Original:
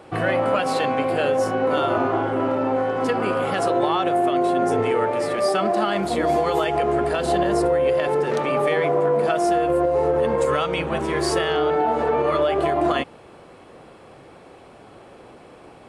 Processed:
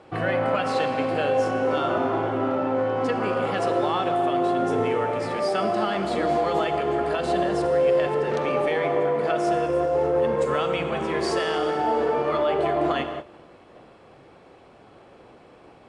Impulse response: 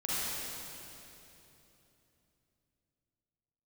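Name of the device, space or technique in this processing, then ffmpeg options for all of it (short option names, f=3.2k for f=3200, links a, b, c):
keyed gated reverb: -filter_complex "[0:a]lowpass=6.8k,asplit=3[a][b][c];[1:a]atrim=start_sample=2205[d];[b][d]afir=irnorm=-1:irlink=0[e];[c]apad=whole_len=700511[f];[e][f]sidechaingate=range=-33dB:threshold=-42dB:ratio=16:detection=peak,volume=-12dB[g];[a][g]amix=inputs=2:normalize=0,volume=-5dB"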